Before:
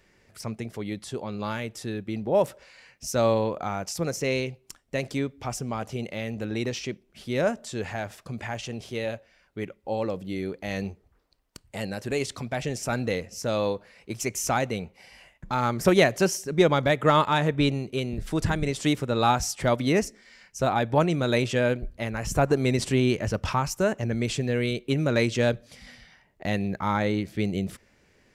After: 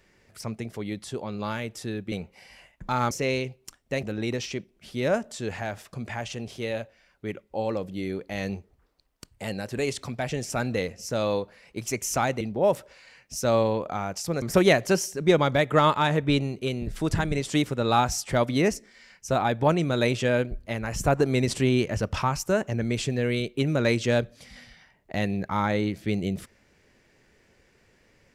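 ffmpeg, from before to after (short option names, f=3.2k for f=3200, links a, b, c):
-filter_complex "[0:a]asplit=6[a][b][c][d][e][f];[a]atrim=end=2.122[g];[b]atrim=start=14.738:end=15.732[h];[c]atrim=start=4.128:end=5.052[i];[d]atrim=start=6.358:end=14.742[j];[e]atrim=start=2.118:end=4.132[k];[f]atrim=start=15.728[l];[g][h]acrossfade=d=0.004:c1=hsin:c2=hsin[m];[m][i]acrossfade=d=0.004:c1=hsin:c2=hsin[n];[n][j]acrossfade=d=0.004:c1=hsin:c2=hsin[o];[o][k]acrossfade=d=0.004:c1=hsin:c2=hsin[p];[p][l]acrossfade=d=0.004:c1=hsin:c2=hsin"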